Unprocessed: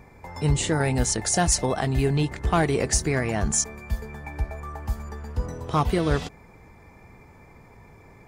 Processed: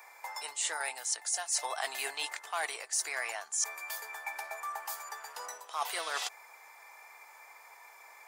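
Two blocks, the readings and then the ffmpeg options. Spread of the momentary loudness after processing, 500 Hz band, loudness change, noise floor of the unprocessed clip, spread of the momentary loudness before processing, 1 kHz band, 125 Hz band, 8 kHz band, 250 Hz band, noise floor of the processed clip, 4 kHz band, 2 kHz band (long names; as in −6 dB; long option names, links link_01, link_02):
21 LU, −18.0 dB, −10.0 dB, −51 dBFS, 11 LU, −8.0 dB, below −40 dB, −7.0 dB, −37.5 dB, −55 dBFS, −4.5 dB, −4.5 dB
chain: -af "highpass=frequency=760:width=0.5412,highpass=frequency=760:width=1.3066,highshelf=frequency=6100:gain=11.5,areverse,acompressor=threshold=-33dB:ratio=6,areverse,volume=1.5dB"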